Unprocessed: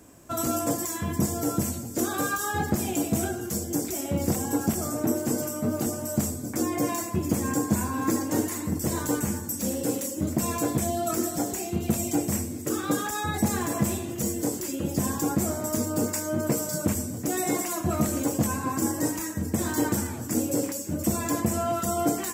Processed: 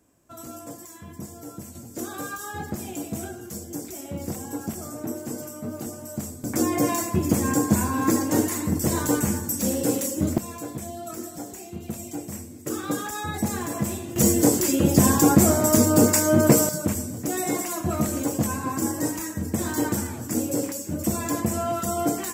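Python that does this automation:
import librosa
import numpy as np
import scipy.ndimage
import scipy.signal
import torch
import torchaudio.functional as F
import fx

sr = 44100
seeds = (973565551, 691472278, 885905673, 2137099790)

y = fx.gain(x, sr, db=fx.steps((0.0, -12.5), (1.75, -6.0), (6.44, 4.0), (10.38, -8.0), (12.66, -1.5), (14.16, 9.5), (16.69, 0.5)))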